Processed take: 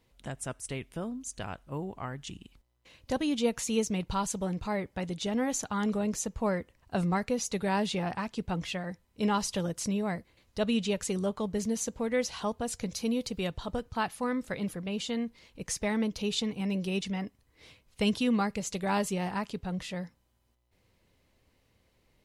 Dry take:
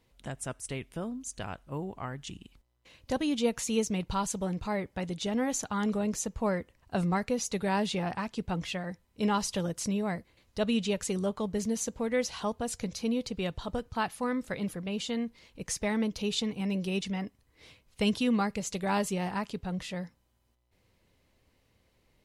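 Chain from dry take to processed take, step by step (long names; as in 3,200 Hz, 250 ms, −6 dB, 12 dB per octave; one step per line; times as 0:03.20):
0:12.89–0:13.48: high-shelf EQ 8,800 Hz +10 dB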